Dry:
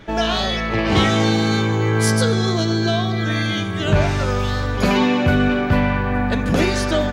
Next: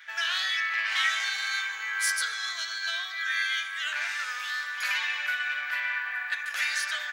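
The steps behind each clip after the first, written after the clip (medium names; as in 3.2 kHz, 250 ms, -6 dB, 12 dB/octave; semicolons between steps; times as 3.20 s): treble shelf 8.9 kHz +9 dB; in parallel at -7 dB: saturation -21.5 dBFS, distortion -8 dB; on the sum: ladder high-pass 1.5 kHz, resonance 55%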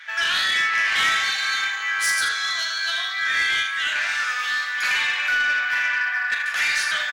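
treble shelf 11 kHz -10.5 dB; on a send: early reflections 38 ms -7 dB, 78 ms -8 dB; on the sum: saturation -22.5 dBFS, distortion -16 dB; trim +8 dB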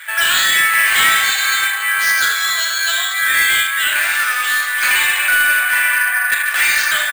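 careless resampling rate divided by 4×, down filtered, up hold; trim +7.5 dB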